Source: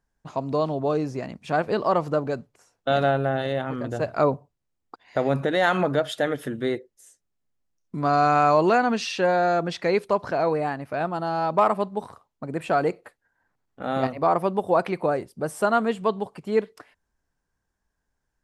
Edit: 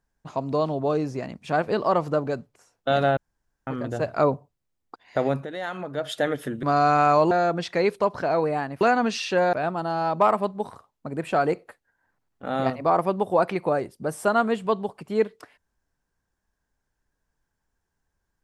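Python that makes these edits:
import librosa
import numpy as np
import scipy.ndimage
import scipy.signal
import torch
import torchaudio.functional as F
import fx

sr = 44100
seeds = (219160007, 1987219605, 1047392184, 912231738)

y = fx.edit(x, sr, fx.room_tone_fill(start_s=3.17, length_s=0.5),
    fx.fade_down_up(start_s=5.27, length_s=0.85, db=-11.0, fade_s=0.19),
    fx.cut(start_s=6.63, length_s=1.37),
    fx.move(start_s=8.68, length_s=0.72, to_s=10.9), tone=tone)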